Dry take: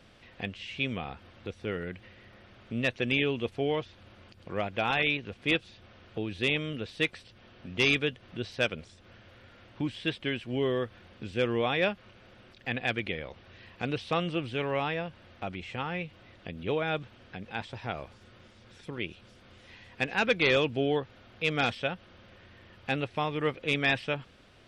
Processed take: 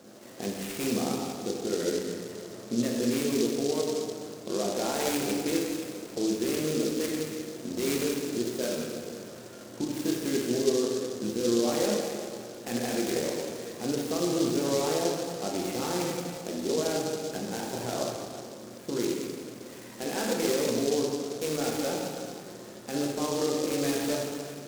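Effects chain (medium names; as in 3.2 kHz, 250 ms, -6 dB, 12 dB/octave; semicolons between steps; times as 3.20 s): high-pass 170 Hz 12 dB/octave; peaking EQ 360 Hz +13 dB 2.7 oct; peak limiter -20.5 dBFS, peak gain reduction 15 dB; plate-style reverb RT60 2.1 s, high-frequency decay 0.95×, DRR -3.5 dB; delay time shaken by noise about 5.1 kHz, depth 0.089 ms; trim -3 dB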